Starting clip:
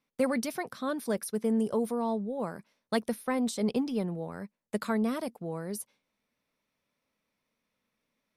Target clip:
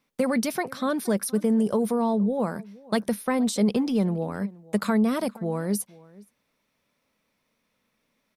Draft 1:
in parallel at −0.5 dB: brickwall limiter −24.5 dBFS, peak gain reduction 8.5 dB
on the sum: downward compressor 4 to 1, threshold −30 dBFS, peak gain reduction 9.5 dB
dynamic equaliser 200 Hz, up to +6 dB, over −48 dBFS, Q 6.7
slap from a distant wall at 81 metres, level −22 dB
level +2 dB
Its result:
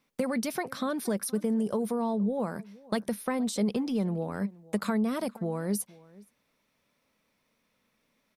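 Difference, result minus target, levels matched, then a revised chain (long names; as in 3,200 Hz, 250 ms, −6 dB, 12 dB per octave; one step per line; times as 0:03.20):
downward compressor: peak gain reduction +6 dB
in parallel at −0.5 dB: brickwall limiter −24.5 dBFS, peak gain reduction 8.5 dB
on the sum: downward compressor 4 to 1, threshold −22 dBFS, peak gain reduction 3.5 dB
dynamic equaliser 200 Hz, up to +6 dB, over −48 dBFS, Q 6.7
slap from a distant wall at 81 metres, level −22 dB
level +2 dB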